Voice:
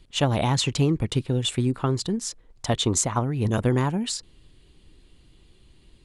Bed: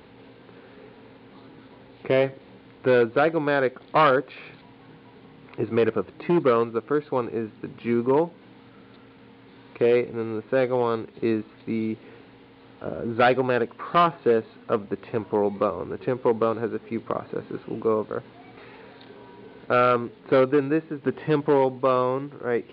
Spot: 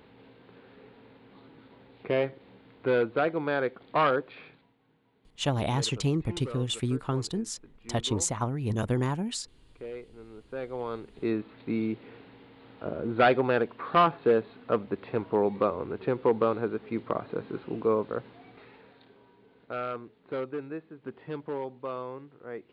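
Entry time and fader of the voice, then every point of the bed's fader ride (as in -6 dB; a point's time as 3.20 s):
5.25 s, -5.5 dB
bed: 4.41 s -6 dB
4.76 s -20 dB
10.16 s -20 dB
11.50 s -2.5 dB
18.19 s -2.5 dB
19.39 s -14.5 dB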